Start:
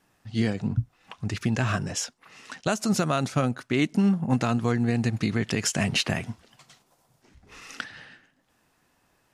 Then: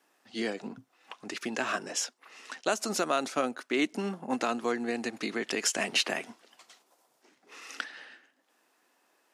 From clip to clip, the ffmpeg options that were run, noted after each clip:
ffmpeg -i in.wav -af "highpass=frequency=290:width=0.5412,highpass=frequency=290:width=1.3066,volume=-1.5dB" out.wav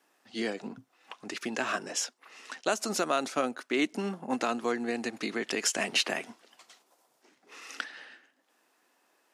ffmpeg -i in.wav -af anull out.wav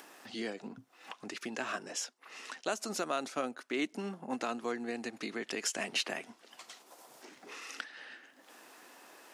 ffmpeg -i in.wav -af "acompressor=mode=upward:threshold=-32dB:ratio=2.5,volume=-6dB" out.wav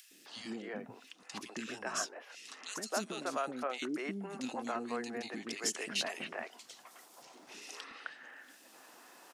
ffmpeg -i in.wav -filter_complex "[0:a]acrossover=split=380|2300[link_01][link_02][link_03];[link_01]adelay=110[link_04];[link_02]adelay=260[link_05];[link_04][link_05][link_03]amix=inputs=3:normalize=0" out.wav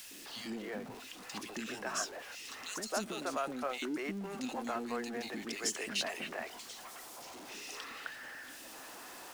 ffmpeg -i in.wav -af "aeval=exprs='val(0)+0.5*0.00531*sgn(val(0))':channel_layout=same,volume=-1dB" out.wav

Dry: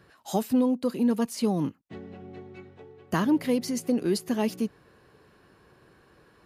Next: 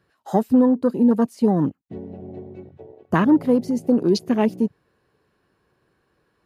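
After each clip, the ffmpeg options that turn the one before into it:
ffmpeg -i in.wav -af "afwtdn=0.0126,volume=7.5dB" out.wav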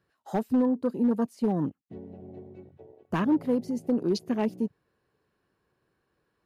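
ffmpeg -i in.wav -af "volume=10dB,asoftclip=hard,volume=-10dB,volume=-8dB" out.wav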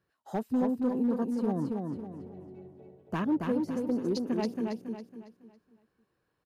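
ffmpeg -i in.wav -af "aecho=1:1:276|552|828|1104|1380:0.631|0.233|0.0864|0.032|0.0118,volume=-4.5dB" out.wav

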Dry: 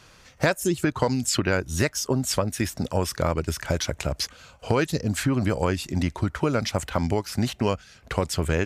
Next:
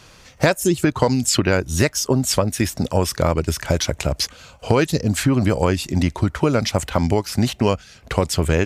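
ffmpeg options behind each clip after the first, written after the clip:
ffmpeg -i in.wav -af "equalizer=frequency=1500:width=1.7:gain=-3,volume=6dB" out.wav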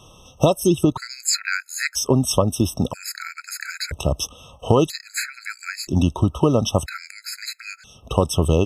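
ffmpeg -i in.wav -af "afftfilt=real='re*gt(sin(2*PI*0.51*pts/sr)*(1-2*mod(floor(b*sr/1024/1300),2)),0)':imag='im*gt(sin(2*PI*0.51*pts/sr)*(1-2*mod(floor(b*sr/1024/1300),2)),0)':win_size=1024:overlap=0.75,volume=1dB" out.wav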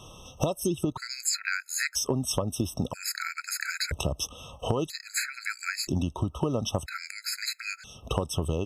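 ffmpeg -i in.wav -af "acompressor=threshold=-26dB:ratio=4" out.wav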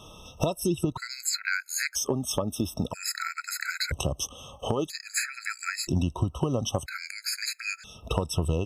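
ffmpeg -i in.wav -af "afftfilt=real='re*pow(10,7/40*sin(2*PI*(2*log(max(b,1)*sr/1024/100)/log(2)-(0.39)*(pts-256)/sr)))':imag='im*pow(10,7/40*sin(2*PI*(2*log(max(b,1)*sr/1024/100)/log(2)-(0.39)*(pts-256)/sr)))':win_size=1024:overlap=0.75" out.wav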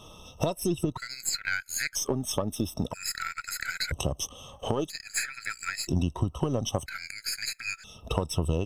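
ffmpeg -i in.wav -af "aeval=exprs='if(lt(val(0),0),0.708*val(0),val(0))':channel_layout=same" out.wav

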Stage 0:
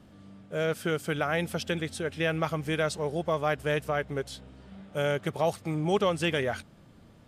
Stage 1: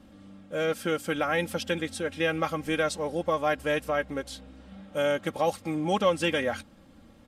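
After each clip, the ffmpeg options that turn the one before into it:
ffmpeg -i in.wav -af "aecho=1:1:3.7:0.66" out.wav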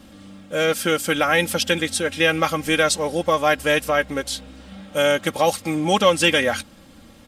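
ffmpeg -i in.wav -af "highshelf=frequency=2200:gain=9,volume=6.5dB" out.wav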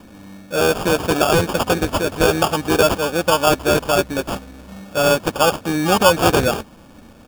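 ffmpeg -i in.wav -af "acrusher=samples=22:mix=1:aa=0.000001,volume=3dB" out.wav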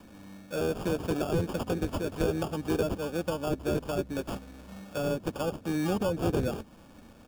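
ffmpeg -i in.wav -filter_complex "[0:a]acrossover=split=470[link_01][link_02];[link_02]acompressor=threshold=-28dB:ratio=6[link_03];[link_01][link_03]amix=inputs=2:normalize=0,volume=-8.5dB" out.wav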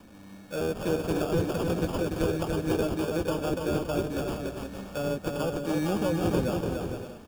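ffmpeg -i in.wav -af "aecho=1:1:290|464|568.4|631|668.6:0.631|0.398|0.251|0.158|0.1" out.wav

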